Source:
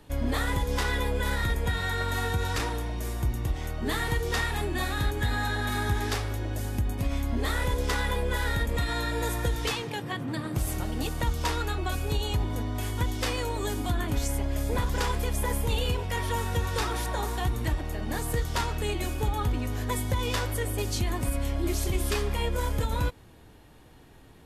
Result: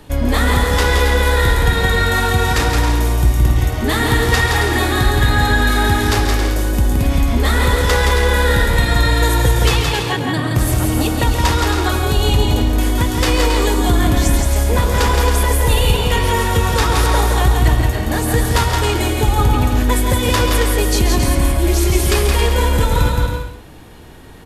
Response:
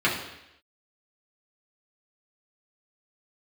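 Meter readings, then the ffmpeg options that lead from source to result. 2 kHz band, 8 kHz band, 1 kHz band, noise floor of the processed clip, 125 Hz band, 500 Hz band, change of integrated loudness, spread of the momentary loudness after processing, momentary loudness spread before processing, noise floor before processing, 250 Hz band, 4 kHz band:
+14.0 dB, +14.0 dB, +14.0 dB, −21 dBFS, +13.5 dB, +14.0 dB, +14.0 dB, 3 LU, 3 LU, −52 dBFS, +14.0 dB, +14.0 dB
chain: -filter_complex "[0:a]asplit=2[link_01][link_02];[link_02]aecho=0:1:170|272|333.2|369.9|392:0.631|0.398|0.251|0.158|0.1[link_03];[link_01][link_03]amix=inputs=2:normalize=0,acontrast=25,asplit=2[link_04][link_05];[link_05]aecho=0:1:135:0.299[link_06];[link_04][link_06]amix=inputs=2:normalize=0,volume=6.5dB"

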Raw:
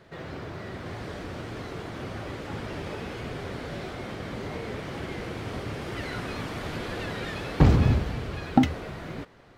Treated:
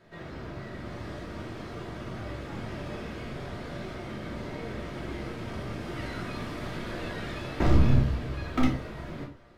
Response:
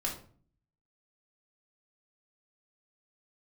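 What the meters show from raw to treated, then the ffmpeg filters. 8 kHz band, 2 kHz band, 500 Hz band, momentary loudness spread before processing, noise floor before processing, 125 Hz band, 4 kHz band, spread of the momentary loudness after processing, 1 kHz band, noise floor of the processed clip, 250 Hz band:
−4.0 dB, −3.0 dB, −3.0 dB, 14 LU, −40 dBFS, −2.5 dB, −3.5 dB, 14 LU, −4.0 dB, −42 dBFS, −3.0 dB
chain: -filter_complex "[0:a]aeval=exprs='0.2*(abs(mod(val(0)/0.2+3,4)-2)-1)':channel_layout=same,aeval=exprs='0.211*(cos(1*acos(clip(val(0)/0.211,-1,1)))-cos(1*PI/2))+0.0376*(cos(2*acos(clip(val(0)/0.211,-1,1)))-cos(2*PI/2))':channel_layout=same[link_01];[1:a]atrim=start_sample=2205,afade=type=out:start_time=0.19:duration=0.01,atrim=end_sample=8820[link_02];[link_01][link_02]afir=irnorm=-1:irlink=0,volume=-6.5dB"

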